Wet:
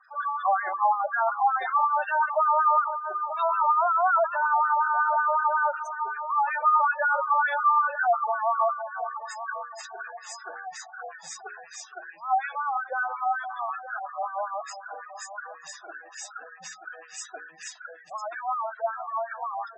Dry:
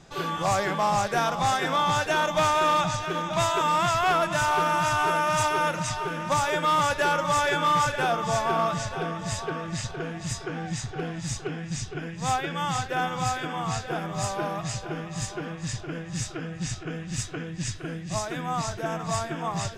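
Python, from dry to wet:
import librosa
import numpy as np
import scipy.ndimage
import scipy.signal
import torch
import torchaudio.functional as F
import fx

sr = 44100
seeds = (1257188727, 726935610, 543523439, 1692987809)

y = fx.filter_lfo_highpass(x, sr, shape='sine', hz=5.4, low_hz=670.0, high_hz=1500.0, q=2.8)
y = fx.spec_gate(y, sr, threshold_db=-10, keep='strong')
y = fx.hum_notches(y, sr, base_hz=60, count=8)
y = F.gain(torch.from_numpy(y), -3.0).numpy()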